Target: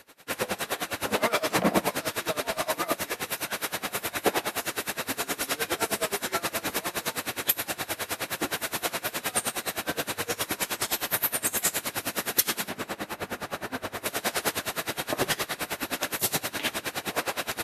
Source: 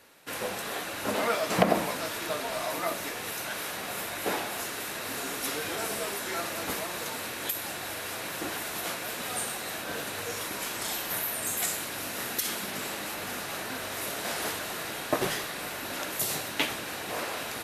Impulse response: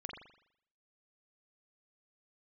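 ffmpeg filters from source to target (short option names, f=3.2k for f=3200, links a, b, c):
-filter_complex "[0:a]asettb=1/sr,asplit=3[a][b][c];[a]atrim=end=12.694[d];[b]atrim=start=12.69:end=14.06,asetpts=PTS-STARTPTS,afade=t=in:d=0.004:c=qsin,afade=t=out:st=1.366:d=0.004:c=qsin,highshelf=f=2.5k:g=-10[e];[c]atrim=start=14.056[f];[d][e]acrossfade=d=0.004:c1=hsin:c2=qsin[g];[g][f]acrossfade=d=0.004:c1=qsin:c2=hsin,aeval=exprs='val(0)*pow(10,-23*(0.5-0.5*cos(2*PI*9.6*n/s))/20)':c=same,volume=9dB"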